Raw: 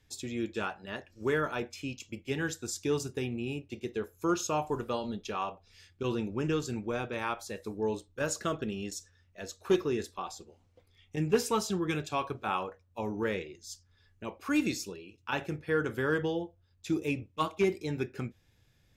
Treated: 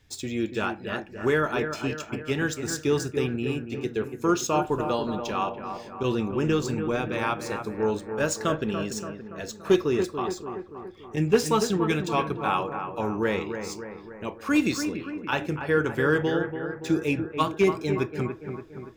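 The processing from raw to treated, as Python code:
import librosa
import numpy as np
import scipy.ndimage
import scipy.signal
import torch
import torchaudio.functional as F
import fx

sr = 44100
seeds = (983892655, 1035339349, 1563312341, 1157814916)

y = scipy.ndimage.median_filter(x, 3, mode='constant')
y = fx.echo_bbd(y, sr, ms=286, stages=4096, feedback_pct=57, wet_db=-8.0)
y = y * 10.0 ** (6.0 / 20.0)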